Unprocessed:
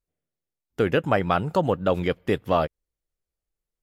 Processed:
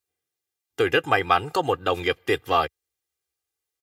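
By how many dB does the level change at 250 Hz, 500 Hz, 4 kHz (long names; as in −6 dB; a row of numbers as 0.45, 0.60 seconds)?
−5.0, −1.0, +7.5 decibels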